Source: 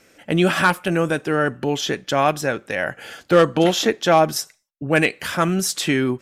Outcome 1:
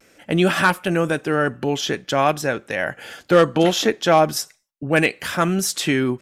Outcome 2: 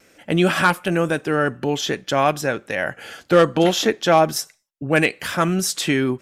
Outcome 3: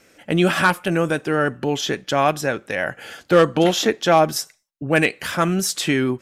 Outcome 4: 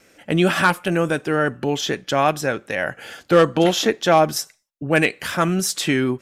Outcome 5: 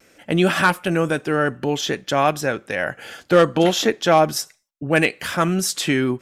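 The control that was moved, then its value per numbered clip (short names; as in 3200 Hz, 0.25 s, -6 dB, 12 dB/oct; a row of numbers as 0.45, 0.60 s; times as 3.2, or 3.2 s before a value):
vibrato, rate: 0.42, 1.2, 6.1, 2.3, 0.65 Hz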